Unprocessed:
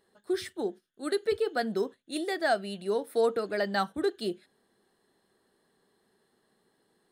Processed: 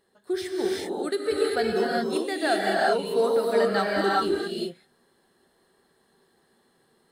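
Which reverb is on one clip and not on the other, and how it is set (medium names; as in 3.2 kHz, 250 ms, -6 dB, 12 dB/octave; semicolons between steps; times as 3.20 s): gated-style reverb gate 420 ms rising, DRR -4 dB; trim +1 dB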